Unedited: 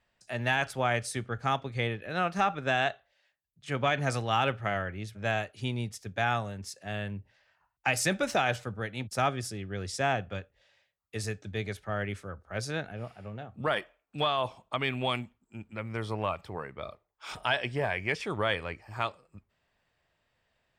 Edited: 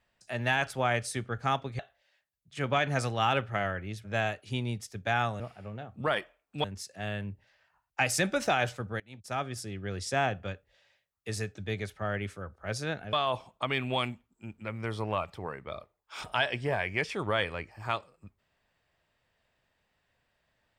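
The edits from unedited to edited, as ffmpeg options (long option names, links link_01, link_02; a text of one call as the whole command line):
ffmpeg -i in.wav -filter_complex "[0:a]asplit=6[link_01][link_02][link_03][link_04][link_05][link_06];[link_01]atrim=end=1.792[link_07];[link_02]atrim=start=2.898:end=6.512[link_08];[link_03]atrim=start=12.998:end=14.242[link_09];[link_04]atrim=start=6.508:end=8.87,asetpts=PTS-STARTPTS,afade=type=out:start_time=2.358:duration=0.004:curve=hsin:silence=0.0891251[link_10];[link_05]atrim=start=8.87:end=13.002,asetpts=PTS-STARTPTS,afade=type=in:duration=0.79:silence=0.0891251[link_11];[link_06]atrim=start=14.238[link_12];[link_07][link_08]acrossfade=duration=0.004:curve1=hsin:curve2=hsin[link_13];[link_13][link_09]acrossfade=duration=0.004:curve1=hsin:curve2=hsin[link_14];[link_10][link_11]concat=n=2:v=0:a=1[link_15];[link_14][link_15]acrossfade=duration=0.004:curve1=hsin:curve2=hsin[link_16];[link_16][link_12]acrossfade=duration=0.004:curve1=hsin:curve2=hsin" out.wav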